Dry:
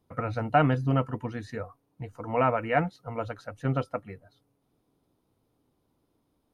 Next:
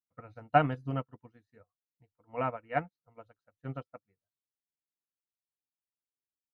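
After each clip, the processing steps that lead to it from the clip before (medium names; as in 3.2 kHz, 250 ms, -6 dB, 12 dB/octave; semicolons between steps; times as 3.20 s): upward expansion 2.5:1, over -44 dBFS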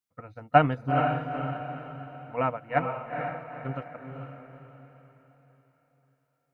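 echo that smears into a reverb 456 ms, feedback 42%, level -4.5 dB; trim +5 dB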